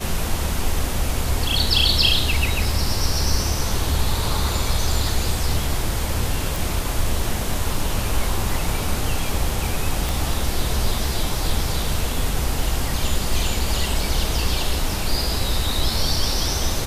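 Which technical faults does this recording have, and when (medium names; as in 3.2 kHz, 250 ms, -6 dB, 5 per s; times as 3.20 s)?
6.56 s: pop
10.09 s: pop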